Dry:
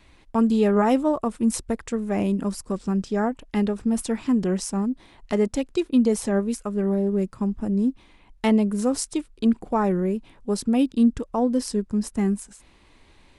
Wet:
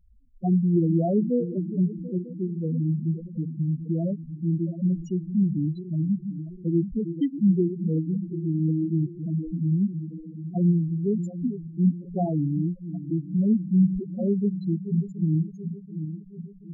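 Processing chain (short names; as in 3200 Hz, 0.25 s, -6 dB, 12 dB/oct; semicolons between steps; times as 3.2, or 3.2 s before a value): regenerating reverse delay 0.292 s, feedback 72%, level -10.5 dB; varispeed -20%; loudest bins only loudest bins 4; gain -1.5 dB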